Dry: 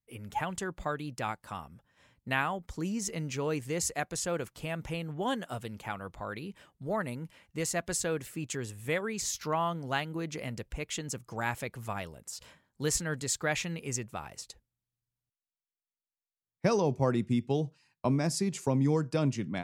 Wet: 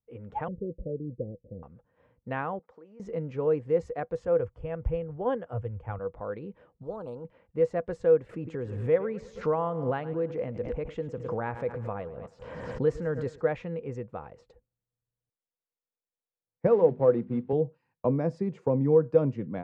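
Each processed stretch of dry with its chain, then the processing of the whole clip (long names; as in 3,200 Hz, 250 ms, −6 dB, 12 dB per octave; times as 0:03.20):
0:00.48–0:01.63: Butterworth low-pass 550 Hz 72 dB per octave + low-shelf EQ 200 Hz +4.5 dB
0:02.59–0:03.00: high-pass filter 700 Hz + spectral tilt −2.5 dB per octave + downward compressor 10 to 1, threshold −50 dBFS
0:04.26–0:05.99: Butterworth band-reject 3,900 Hz, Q 5 + low shelf with overshoot 130 Hz +12.5 dB, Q 1.5 + multiband upward and downward expander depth 70%
0:06.83–0:07.25: Butterworth band-reject 1,900 Hz, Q 0.62 + every bin compressed towards the loudest bin 2 to 1
0:08.29–0:13.41: repeating echo 108 ms, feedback 52%, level −18 dB + background raised ahead of every attack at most 36 dB per second
0:16.67–0:17.53: variable-slope delta modulation 32 kbit/s + band-pass filter 130–4,300 Hz + mains-hum notches 50/100/150/200/250 Hz
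whole clip: low-pass filter 1,200 Hz 12 dB per octave; parametric band 490 Hz +15 dB 0.21 octaves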